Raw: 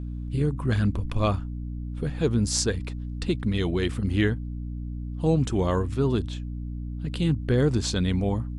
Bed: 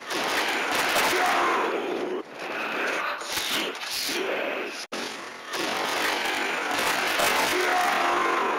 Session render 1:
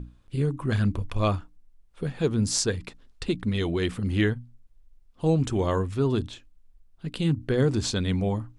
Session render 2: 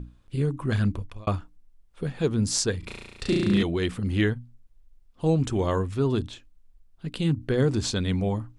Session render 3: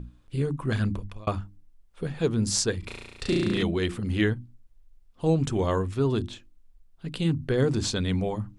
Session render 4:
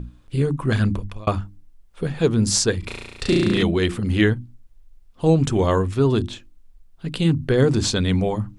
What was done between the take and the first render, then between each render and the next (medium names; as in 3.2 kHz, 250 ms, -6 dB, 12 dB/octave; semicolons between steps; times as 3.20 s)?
hum notches 60/120/180/240/300 Hz
0.87–1.27 s: fade out; 2.79–3.63 s: flutter echo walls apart 6 m, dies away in 1.4 s
hum notches 50/100/150/200/250/300/350 Hz
trim +6.5 dB; peak limiter -3 dBFS, peak gain reduction 2 dB